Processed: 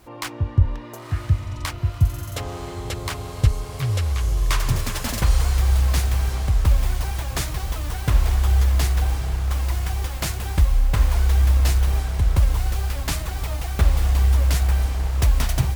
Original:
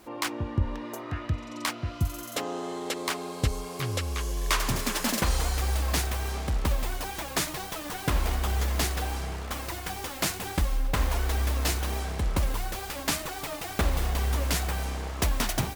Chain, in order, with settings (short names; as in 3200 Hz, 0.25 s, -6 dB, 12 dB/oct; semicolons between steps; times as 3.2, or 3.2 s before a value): resonant low shelf 160 Hz +8.5 dB, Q 1.5; diffused feedback echo 0.99 s, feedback 61%, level -10.5 dB